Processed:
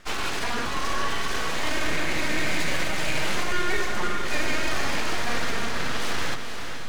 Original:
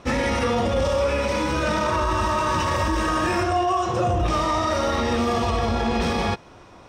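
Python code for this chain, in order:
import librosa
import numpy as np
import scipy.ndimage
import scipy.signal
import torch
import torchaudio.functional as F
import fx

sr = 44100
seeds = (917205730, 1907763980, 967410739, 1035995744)

p1 = scipy.signal.sosfilt(scipy.signal.butter(2, 480.0, 'highpass', fs=sr, output='sos'), x)
p2 = np.abs(p1)
y = p2 + fx.echo_diffused(p2, sr, ms=467, feedback_pct=54, wet_db=-7.0, dry=0)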